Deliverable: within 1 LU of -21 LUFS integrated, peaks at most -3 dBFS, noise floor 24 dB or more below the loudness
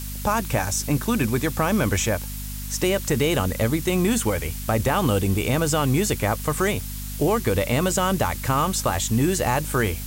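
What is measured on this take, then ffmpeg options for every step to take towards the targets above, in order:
hum 50 Hz; highest harmonic 250 Hz; hum level -30 dBFS; noise floor -32 dBFS; noise floor target -47 dBFS; loudness -23.0 LUFS; peak level -8.0 dBFS; loudness target -21.0 LUFS
-> -af "bandreject=f=50:t=h:w=6,bandreject=f=100:t=h:w=6,bandreject=f=150:t=h:w=6,bandreject=f=200:t=h:w=6,bandreject=f=250:t=h:w=6"
-af "afftdn=nr=15:nf=-32"
-af "volume=1.26"

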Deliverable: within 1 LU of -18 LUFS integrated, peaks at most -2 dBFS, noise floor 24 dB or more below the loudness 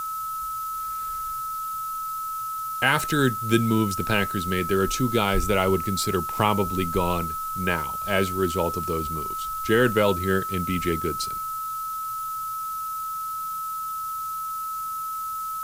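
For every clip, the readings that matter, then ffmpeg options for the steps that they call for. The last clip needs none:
steady tone 1.3 kHz; tone level -28 dBFS; noise floor -31 dBFS; noise floor target -50 dBFS; loudness -25.5 LUFS; peak level -5.0 dBFS; loudness target -18.0 LUFS
-> -af "bandreject=f=1300:w=30"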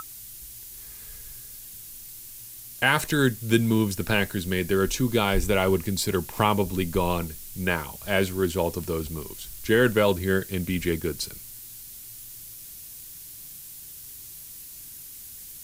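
steady tone not found; noise floor -43 dBFS; noise floor target -49 dBFS
-> -af "afftdn=nr=6:nf=-43"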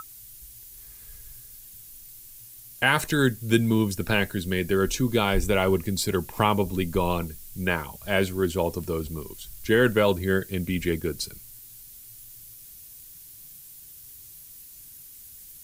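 noise floor -47 dBFS; noise floor target -49 dBFS
-> -af "afftdn=nr=6:nf=-47"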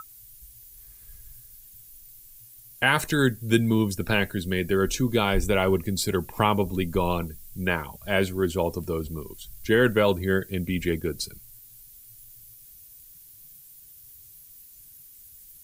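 noise floor -50 dBFS; loudness -25.0 LUFS; peak level -5.5 dBFS; loudness target -18.0 LUFS
-> -af "volume=2.24,alimiter=limit=0.794:level=0:latency=1"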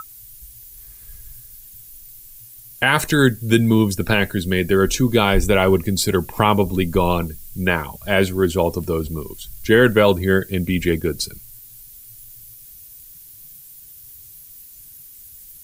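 loudness -18.5 LUFS; peak level -2.0 dBFS; noise floor -43 dBFS

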